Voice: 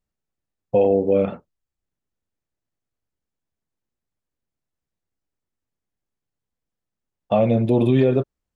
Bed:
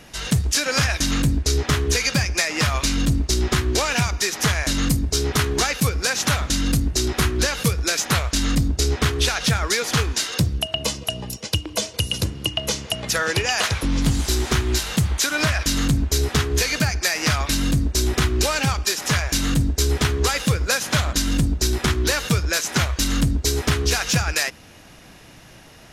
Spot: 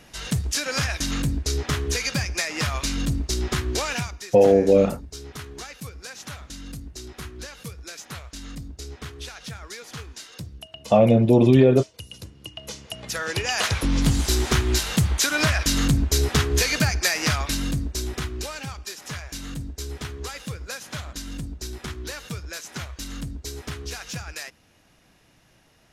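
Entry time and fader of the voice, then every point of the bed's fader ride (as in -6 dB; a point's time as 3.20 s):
3.60 s, +2.0 dB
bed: 3.93 s -5 dB
4.26 s -17 dB
12.30 s -17 dB
13.78 s -0.5 dB
17.06 s -0.5 dB
18.67 s -13.5 dB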